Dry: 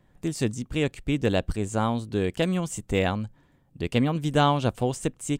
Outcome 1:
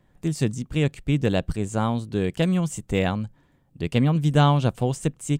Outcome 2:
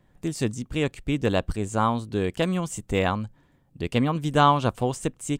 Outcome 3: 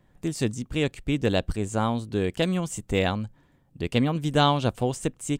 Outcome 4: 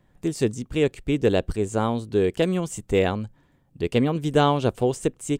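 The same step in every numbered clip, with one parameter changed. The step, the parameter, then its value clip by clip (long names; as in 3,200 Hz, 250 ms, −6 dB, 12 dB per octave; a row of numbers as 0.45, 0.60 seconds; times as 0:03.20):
dynamic equaliser, frequency: 150, 1,100, 4,000, 410 Hertz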